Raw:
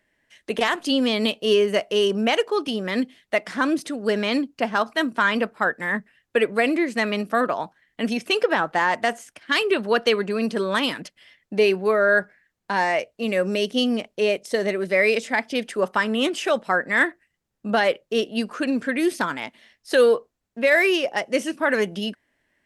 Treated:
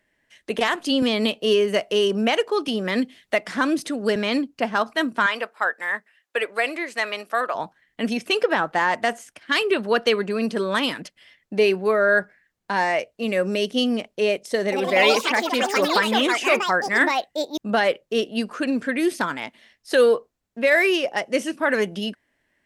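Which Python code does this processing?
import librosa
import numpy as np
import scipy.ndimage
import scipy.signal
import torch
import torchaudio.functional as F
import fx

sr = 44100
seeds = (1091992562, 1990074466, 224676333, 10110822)

y = fx.band_squash(x, sr, depth_pct=40, at=(1.02, 4.16))
y = fx.highpass(y, sr, hz=610.0, slope=12, at=(5.26, 7.55))
y = fx.echo_pitch(y, sr, ms=121, semitones=5, count=3, db_per_echo=-3.0, at=(14.6, 18.41))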